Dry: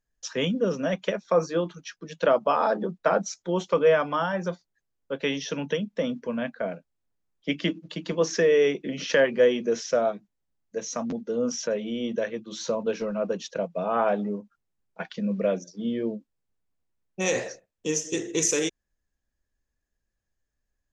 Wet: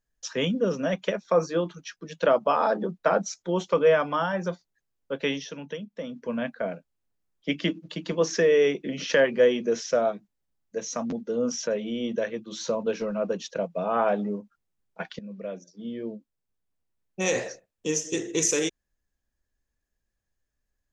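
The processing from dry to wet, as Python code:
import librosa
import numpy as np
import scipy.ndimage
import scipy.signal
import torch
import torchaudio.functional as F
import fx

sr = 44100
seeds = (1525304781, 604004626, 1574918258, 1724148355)

y = fx.edit(x, sr, fx.fade_down_up(start_s=5.31, length_s=1.0, db=-8.0, fade_s=0.2),
    fx.fade_in_from(start_s=15.19, length_s=2.04, floor_db=-14.5), tone=tone)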